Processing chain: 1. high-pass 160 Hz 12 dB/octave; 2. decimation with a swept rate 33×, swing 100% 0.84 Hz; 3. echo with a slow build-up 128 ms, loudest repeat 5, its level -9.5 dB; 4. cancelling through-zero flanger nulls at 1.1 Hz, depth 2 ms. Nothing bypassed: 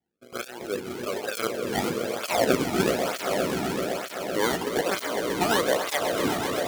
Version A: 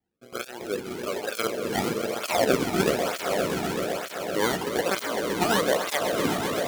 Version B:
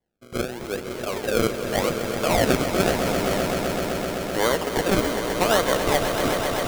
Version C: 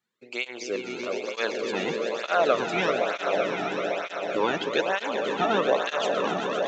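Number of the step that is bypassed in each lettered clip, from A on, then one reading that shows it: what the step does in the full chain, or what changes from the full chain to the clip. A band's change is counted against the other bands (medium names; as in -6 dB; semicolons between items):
1, crest factor change -2.0 dB; 4, 125 Hz band +4.0 dB; 2, 8 kHz band -9.5 dB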